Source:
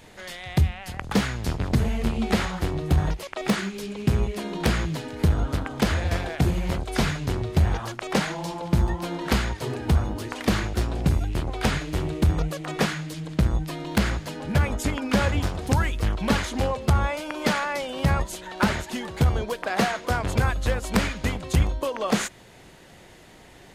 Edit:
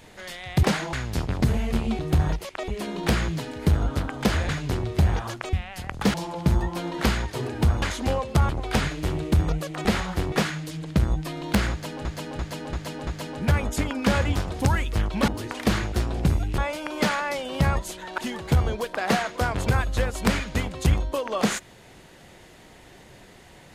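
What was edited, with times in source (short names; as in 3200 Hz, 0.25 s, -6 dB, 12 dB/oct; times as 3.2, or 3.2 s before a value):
0.63–1.24 swap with 8.11–8.41
2.3–2.77 move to 12.75
3.46–4.25 cut
6.06–7.07 cut
10.09–11.39 swap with 16.35–17.02
14.14–14.48 loop, 5 plays
18.62–18.87 cut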